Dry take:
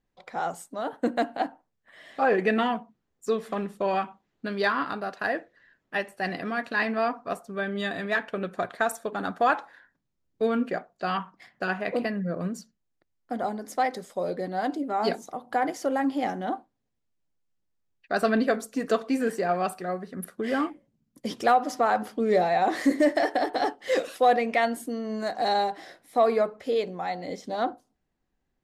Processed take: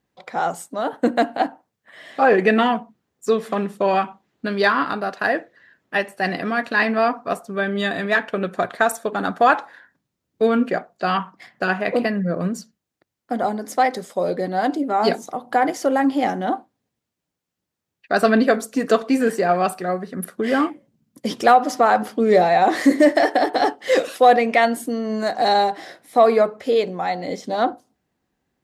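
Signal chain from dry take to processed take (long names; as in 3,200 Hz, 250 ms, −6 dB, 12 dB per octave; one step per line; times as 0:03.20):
high-pass filter 87 Hz
level +7.5 dB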